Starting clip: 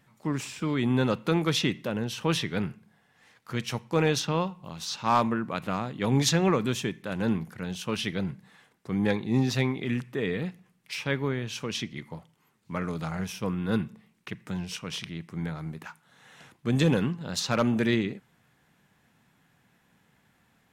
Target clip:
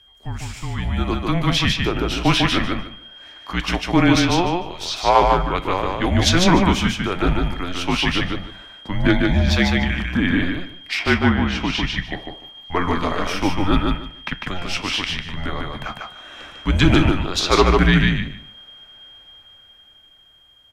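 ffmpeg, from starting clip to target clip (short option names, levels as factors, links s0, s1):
-filter_complex "[0:a]asettb=1/sr,asplit=3[s0][s1][s2];[s0]atrim=end=10.994[s3];[s1]atrim=start=10.99:end=11.84,asetpts=PTS-STARTPTS,afade=t=in:d=0.004:c=qsin,afade=t=out:st=0.846:d=0.004:c=qsin,aemphasis=mode=reproduction:type=50kf[s4];[s2]atrim=start=11.836[s5];[s3][s4]acrossfade=d=0.004:c1=hsin:c2=qsin[s6];[s6][s5]acrossfade=d=0.004:c1=qsin:c2=hsin,aeval=exprs='val(0)+0.00282*sin(2*PI*3400*n/s)':c=same,acrossover=split=260|5300[s7][s8][s9];[s8]dynaudnorm=f=250:g=13:m=5.01[s10];[s7][s10][s9]amix=inputs=3:normalize=0,afreqshift=-180,flanger=delay=8.1:depth=6.4:regen=-75:speed=0.21:shape=sinusoidal,aecho=1:1:149|298|447:0.708|0.135|0.0256,volume=1.78"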